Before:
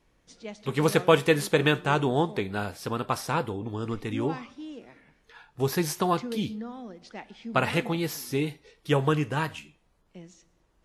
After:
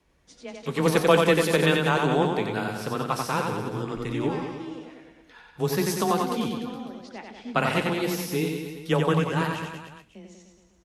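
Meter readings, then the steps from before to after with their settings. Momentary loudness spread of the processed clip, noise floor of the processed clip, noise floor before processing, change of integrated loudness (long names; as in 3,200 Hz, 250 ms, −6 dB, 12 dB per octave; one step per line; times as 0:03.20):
17 LU, −59 dBFS, −68 dBFS, +2.0 dB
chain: frequency shifter +15 Hz
harmonic generator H 8 −42 dB, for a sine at −4.5 dBFS
reverse bouncing-ball delay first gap 90 ms, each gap 1.1×, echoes 5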